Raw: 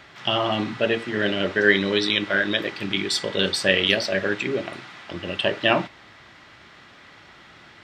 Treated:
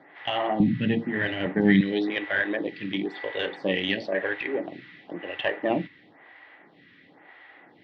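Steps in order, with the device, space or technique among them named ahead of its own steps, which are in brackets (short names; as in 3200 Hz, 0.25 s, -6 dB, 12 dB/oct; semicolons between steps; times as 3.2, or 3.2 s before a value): vibe pedal into a guitar amplifier (photocell phaser 0.98 Hz; tube stage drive 12 dB, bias 0.5; speaker cabinet 110–3600 Hz, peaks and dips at 170 Hz +5 dB, 290 Hz +10 dB, 480 Hz +7 dB, 780 Hz +8 dB, 1300 Hz -5 dB, 1900 Hz +10 dB); 0.6–1.81 resonant low shelf 270 Hz +13 dB, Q 1.5; gain -3.5 dB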